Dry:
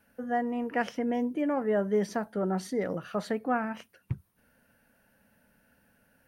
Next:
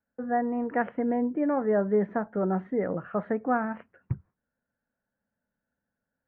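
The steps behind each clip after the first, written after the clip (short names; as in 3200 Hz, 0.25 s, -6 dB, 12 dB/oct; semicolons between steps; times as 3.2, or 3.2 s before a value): inverse Chebyshev low-pass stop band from 4600 Hz, stop band 50 dB; gate with hold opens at -55 dBFS; gain +2.5 dB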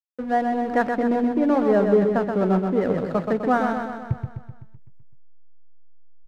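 backlash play -37.5 dBFS; on a send: feedback echo 0.127 s, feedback 58%, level -5.5 dB; on the sum: gain +5.5 dB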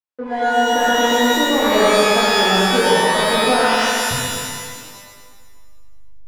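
overdrive pedal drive 12 dB, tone 1200 Hz, clips at -8.5 dBFS; shimmer reverb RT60 1.5 s, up +12 st, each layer -2 dB, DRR -6 dB; gain -3.5 dB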